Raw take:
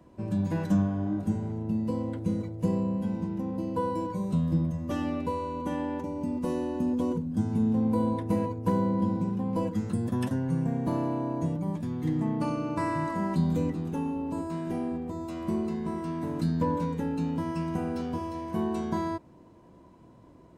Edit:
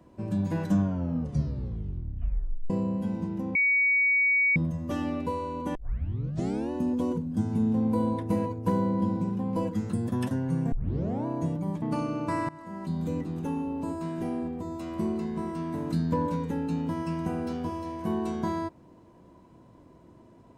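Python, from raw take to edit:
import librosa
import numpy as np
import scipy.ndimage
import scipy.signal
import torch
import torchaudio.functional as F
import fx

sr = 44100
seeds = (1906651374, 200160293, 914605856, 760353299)

y = fx.edit(x, sr, fx.tape_stop(start_s=0.81, length_s=1.89),
    fx.bleep(start_s=3.55, length_s=1.01, hz=2250.0, db=-20.0),
    fx.tape_start(start_s=5.75, length_s=0.96),
    fx.tape_start(start_s=10.72, length_s=0.54),
    fx.cut(start_s=11.82, length_s=0.49),
    fx.fade_in_from(start_s=12.98, length_s=0.95, floor_db=-19.5), tone=tone)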